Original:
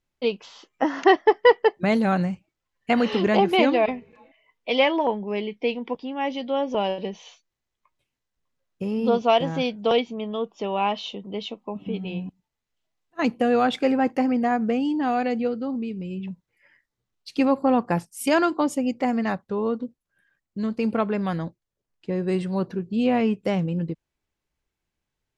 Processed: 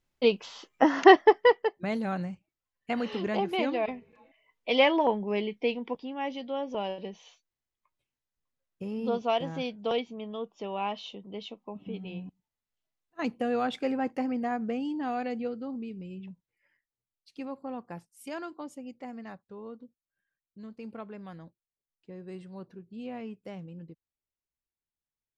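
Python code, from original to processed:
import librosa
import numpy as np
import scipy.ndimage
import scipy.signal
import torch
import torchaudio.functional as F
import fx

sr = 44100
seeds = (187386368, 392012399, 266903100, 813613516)

y = fx.gain(x, sr, db=fx.line((1.16, 1.0), (1.71, -10.0), (3.63, -10.0), (4.86, -2.0), (5.37, -2.0), (6.58, -8.5), (15.98, -8.5), (17.31, -18.0)))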